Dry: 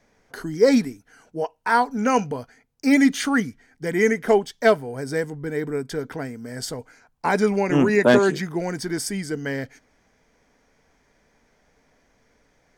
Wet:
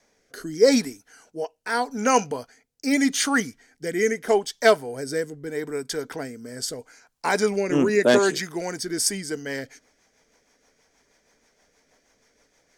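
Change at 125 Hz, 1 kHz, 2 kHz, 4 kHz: -7.0, -2.5, -1.5, +4.0 dB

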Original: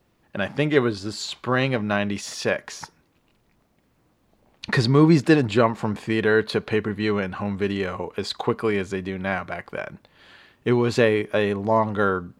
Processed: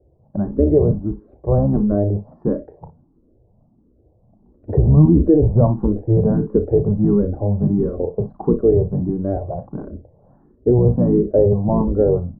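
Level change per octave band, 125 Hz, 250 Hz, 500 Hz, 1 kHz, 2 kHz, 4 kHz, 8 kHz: +9.5 dB, +5.5 dB, +4.5 dB, -5.5 dB, under -25 dB, under -40 dB, under -40 dB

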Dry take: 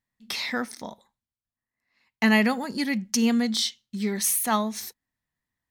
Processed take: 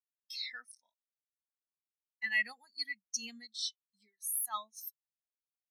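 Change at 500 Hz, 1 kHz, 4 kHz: -31.0, -16.5, -10.5 dB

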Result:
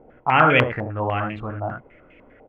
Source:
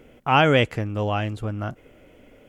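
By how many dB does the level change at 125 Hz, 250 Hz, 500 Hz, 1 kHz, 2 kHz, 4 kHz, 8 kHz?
-1.5 dB, -1.0 dB, 0.0 dB, +3.5 dB, +4.0 dB, -3.5 dB, n/a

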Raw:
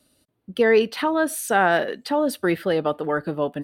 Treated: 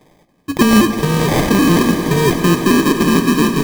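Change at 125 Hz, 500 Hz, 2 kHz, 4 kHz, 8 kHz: +18.5, +3.0, +4.5, +12.0, +11.0 dB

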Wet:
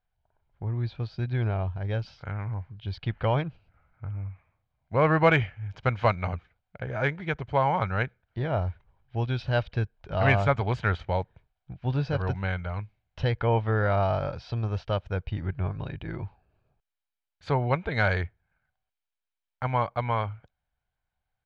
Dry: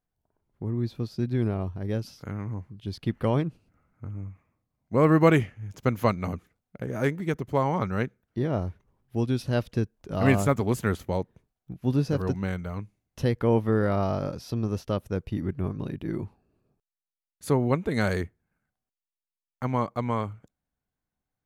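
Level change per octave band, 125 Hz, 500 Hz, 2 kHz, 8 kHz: +0.5 dB, -1.5 dB, +5.0 dB, under -15 dB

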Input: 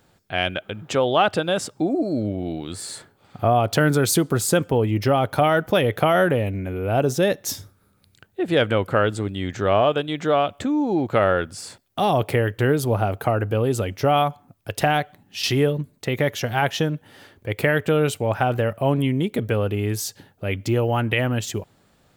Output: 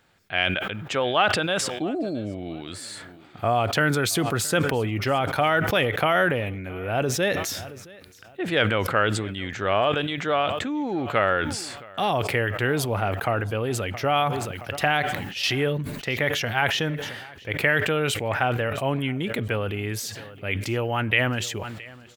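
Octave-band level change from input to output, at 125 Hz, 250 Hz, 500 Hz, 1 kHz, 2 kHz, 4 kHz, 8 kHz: -4.5, -5.0, -4.5, -2.0, +2.5, +1.5, -2.0 dB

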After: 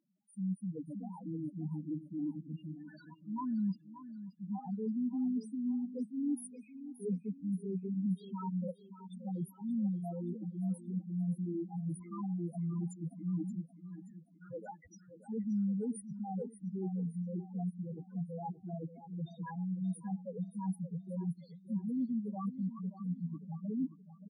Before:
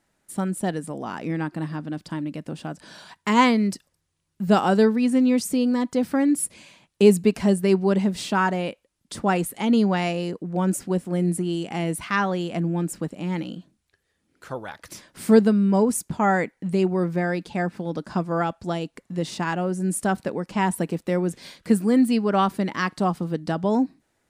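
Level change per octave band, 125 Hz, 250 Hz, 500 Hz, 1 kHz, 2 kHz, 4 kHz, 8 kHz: -11.0 dB, -13.5 dB, -23.0 dB, -23.0 dB, under -35 dB, under -30 dB, -23.5 dB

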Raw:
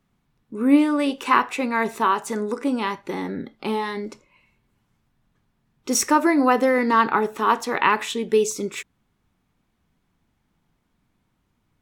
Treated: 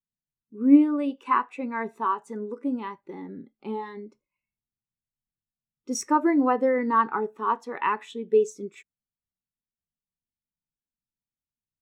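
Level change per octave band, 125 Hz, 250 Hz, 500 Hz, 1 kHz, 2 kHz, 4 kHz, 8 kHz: n/a, -2.0 dB, -4.0 dB, -5.0 dB, -10.0 dB, -14.0 dB, -11.5 dB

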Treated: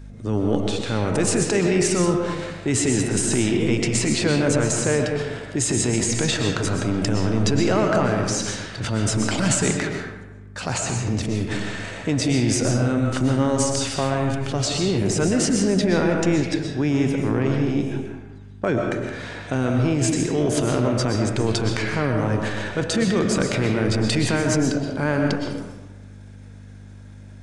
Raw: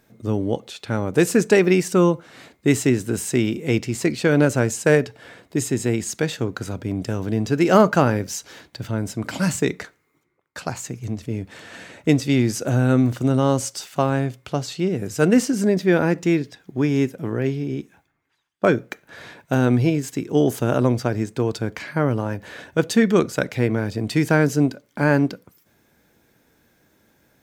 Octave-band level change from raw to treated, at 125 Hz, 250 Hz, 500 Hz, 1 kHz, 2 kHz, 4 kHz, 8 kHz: 0.0, -1.0, -2.0, -1.5, -0.5, +6.0, +6.5 dB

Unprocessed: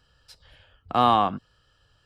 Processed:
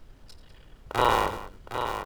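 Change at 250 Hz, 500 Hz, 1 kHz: -7.5, 0.0, -4.0 dB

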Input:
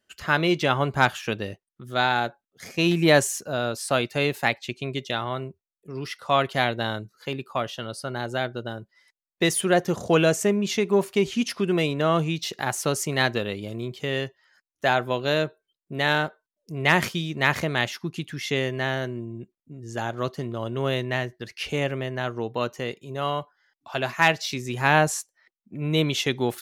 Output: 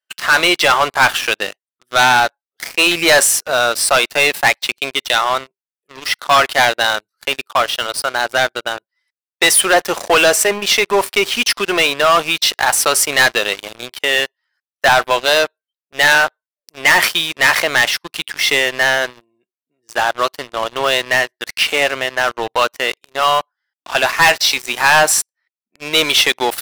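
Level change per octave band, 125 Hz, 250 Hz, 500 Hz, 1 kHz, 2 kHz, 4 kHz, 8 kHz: -7.5, -1.0, +6.5, +11.0, +13.0, +14.5, +15.5 dB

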